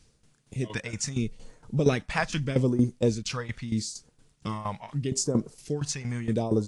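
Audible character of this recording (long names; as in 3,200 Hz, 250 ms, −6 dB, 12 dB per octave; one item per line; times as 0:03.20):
phaser sweep stages 2, 0.79 Hz, lowest notch 310–2,600 Hz
a quantiser's noise floor 12 bits, dither triangular
tremolo saw down 4.3 Hz, depth 80%
AAC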